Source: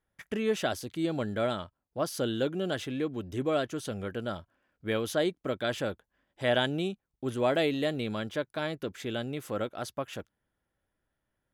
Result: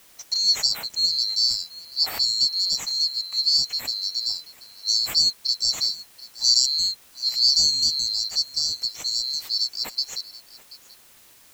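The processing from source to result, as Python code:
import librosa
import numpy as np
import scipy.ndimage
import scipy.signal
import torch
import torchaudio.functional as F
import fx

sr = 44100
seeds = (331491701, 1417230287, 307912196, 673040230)

y = fx.band_swap(x, sr, width_hz=4000)
y = fx.quant_dither(y, sr, seeds[0], bits=10, dither='triangular')
y = y + 10.0 ** (-19.0 / 20.0) * np.pad(y, (int(733 * sr / 1000.0), 0))[:len(y)]
y = y * librosa.db_to_amplitude(7.5)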